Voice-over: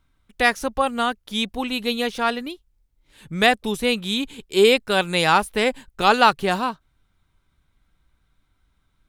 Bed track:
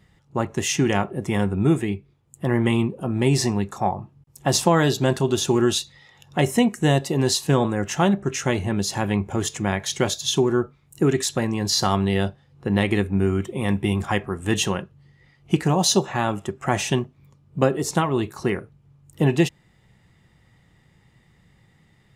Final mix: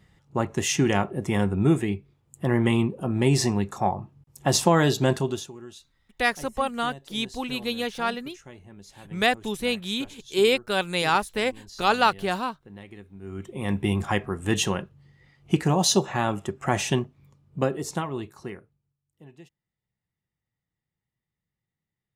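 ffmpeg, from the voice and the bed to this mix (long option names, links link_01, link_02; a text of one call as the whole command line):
ffmpeg -i stem1.wav -i stem2.wav -filter_complex "[0:a]adelay=5800,volume=-5dB[link_01];[1:a]volume=20dB,afade=type=out:start_time=5.11:duration=0.4:silence=0.0794328,afade=type=in:start_time=13.21:duration=0.66:silence=0.0841395,afade=type=out:start_time=16.97:duration=1.99:silence=0.0398107[link_02];[link_01][link_02]amix=inputs=2:normalize=0" out.wav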